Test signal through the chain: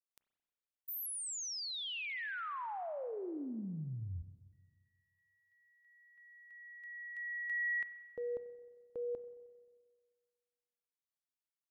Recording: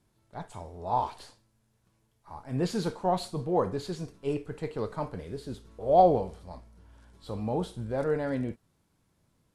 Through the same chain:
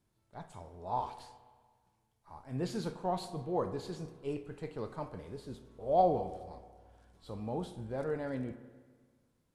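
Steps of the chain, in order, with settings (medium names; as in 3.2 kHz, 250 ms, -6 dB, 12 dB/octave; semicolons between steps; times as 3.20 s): spring tank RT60 1.6 s, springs 31/44 ms, chirp 60 ms, DRR 11.5 dB; trim -7 dB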